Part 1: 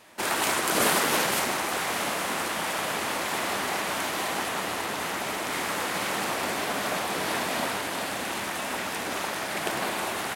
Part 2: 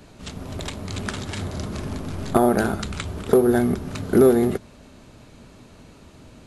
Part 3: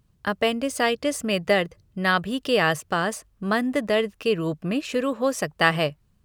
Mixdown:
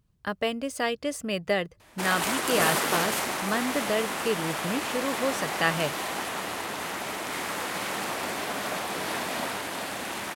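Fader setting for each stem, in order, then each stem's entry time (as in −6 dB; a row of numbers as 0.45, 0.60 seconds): −2.5 dB, muted, −5.5 dB; 1.80 s, muted, 0.00 s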